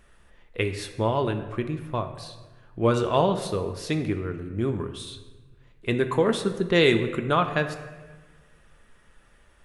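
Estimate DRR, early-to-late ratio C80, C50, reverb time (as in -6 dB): 6.5 dB, 11.0 dB, 9.5 dB, 1.3 s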